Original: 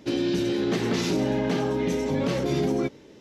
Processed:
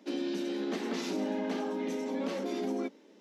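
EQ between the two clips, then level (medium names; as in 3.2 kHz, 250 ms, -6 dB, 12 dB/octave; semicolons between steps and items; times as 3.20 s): rippled Chebyshev high-pass 190 Hz, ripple 3 dB; -6.5 dB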